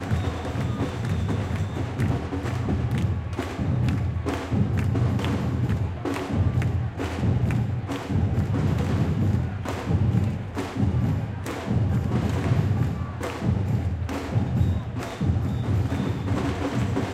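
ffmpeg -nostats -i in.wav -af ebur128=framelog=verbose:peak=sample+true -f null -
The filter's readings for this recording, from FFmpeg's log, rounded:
Integrated loudness:
  I:         -25.9 LUFS
  Threshold: -35.9 LUFS
Loudness range:
  LRA:         1.7 LU
  Threshold: -45.8 LUFS
  LRA low:   -26.7 LUFS
  LRA high:  -25.0 LUFS
Sample peak:
  Peak:       -9.8 dBFS
True peak:
  Peak:       -9.8 dBFS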